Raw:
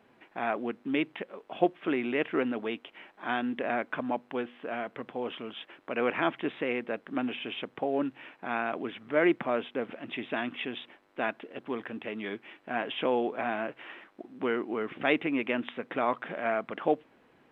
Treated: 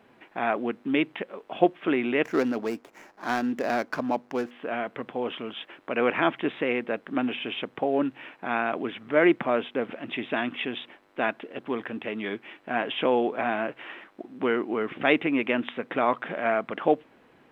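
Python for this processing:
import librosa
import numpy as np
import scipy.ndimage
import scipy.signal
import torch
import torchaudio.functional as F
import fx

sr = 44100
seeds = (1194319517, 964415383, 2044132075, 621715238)

y = fx.median_filter(x, sr, points=15, at=(2.24, 4.51))
y = y * librosa.db_to_amplitude(4.5)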